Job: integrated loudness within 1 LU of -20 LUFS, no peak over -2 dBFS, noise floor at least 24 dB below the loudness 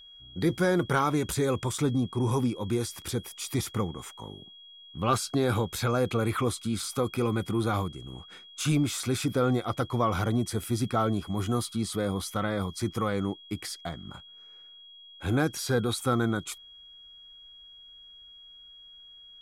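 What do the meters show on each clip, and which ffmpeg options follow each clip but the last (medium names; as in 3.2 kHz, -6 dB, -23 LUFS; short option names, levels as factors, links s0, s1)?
steady tone 3.3 kHz; tone level -48 dBFS; loudness -29.0 LUFS; peak level -12.0 dBFS; loudness target -20.0 LUFS
-> -af "bandreject=f=3300:w=30"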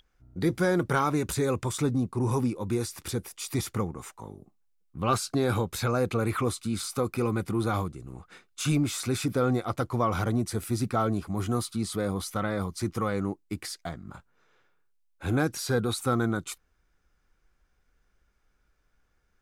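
steady tone not found; loudness -29.0 LUFS; peak level -12.0 dBFS; loudness target -20.0 LUFS
-> -af "volume=2.82"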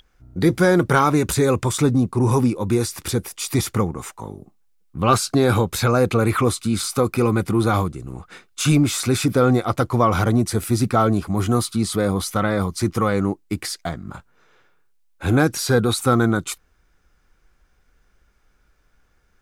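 loudness -20.0 LUFS; peak level -3.0 dBFS; noise floor -62 dBFS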